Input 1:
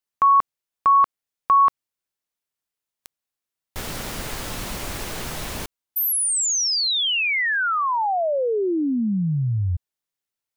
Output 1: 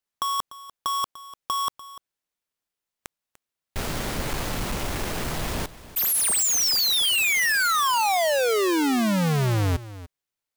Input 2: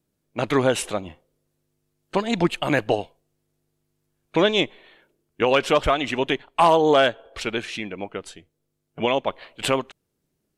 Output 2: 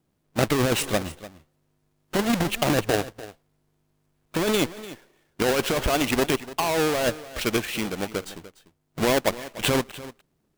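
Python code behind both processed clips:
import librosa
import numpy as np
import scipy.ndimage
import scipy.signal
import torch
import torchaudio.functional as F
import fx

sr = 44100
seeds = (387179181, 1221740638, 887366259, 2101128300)

p1 = fx.halfwave_hold(x, sr)
p2 = fx.over_compress(p1, sr, threshold_db=-17.0, ratio=-1.0)
p3 = p2 + fx.echo_single(p2, sr, ms=295, db=-16.5, dry=0)
y = F.gain(torch.from_numpy(p3), -4.0).numpy()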